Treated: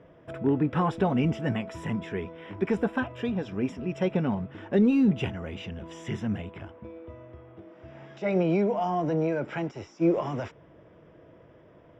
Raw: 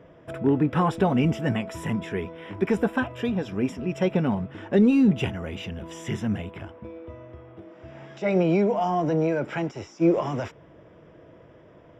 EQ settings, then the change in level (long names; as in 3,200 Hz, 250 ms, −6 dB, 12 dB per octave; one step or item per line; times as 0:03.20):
high-frequency loss of the air 57 metres
−3.0 dB